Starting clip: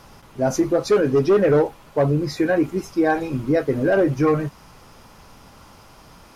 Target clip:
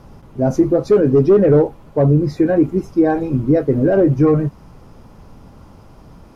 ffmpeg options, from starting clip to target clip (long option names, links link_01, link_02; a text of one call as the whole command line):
ffmpeg -i in.wav -af "tiltshelf=frequency=800:gain=8.5" out.wav